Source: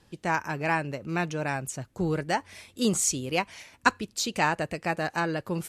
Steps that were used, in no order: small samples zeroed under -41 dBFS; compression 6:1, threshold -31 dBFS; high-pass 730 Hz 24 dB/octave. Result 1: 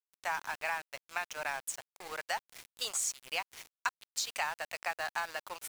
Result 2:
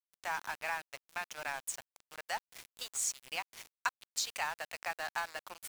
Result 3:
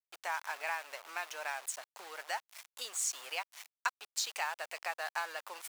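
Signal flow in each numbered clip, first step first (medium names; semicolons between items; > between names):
high-pass > compression > small samples zeroed; compression > high-pass > small samples zeroed; compression > small samples zeroed > high-pass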